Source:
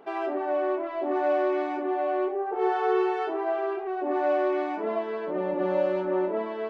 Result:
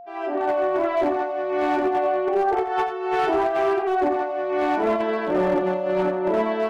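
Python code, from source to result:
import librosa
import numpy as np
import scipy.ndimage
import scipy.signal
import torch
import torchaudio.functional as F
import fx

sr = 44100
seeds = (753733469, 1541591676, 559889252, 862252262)

p1 = fx.fade_in_head(x, sr, length_s=0.62)
p2 = fx.peak_eq(p1, sr, hz=470.0, db=-4.0, octaves=0.46)
p3 = fx.over_compress(p2, sr, threshold_db=-29.0, ratio=-0.5)
p4 = p3 + 10.0 ** (-47.0 / 20.0) * np.sin(2.0 * np.pi * 700.0 * np.arange(len(p3)) / sr)
p5 = np.clip(p4, -10.0 ** (-24.0 / 20.0), 10.0 ** (-24.0 / 20.0))
p6 = p5 + fx.echo_single(p5, sr, ms=87, db=-10.5, dry=0)
y = p6 * librosa.db_to_amplitude(8.0)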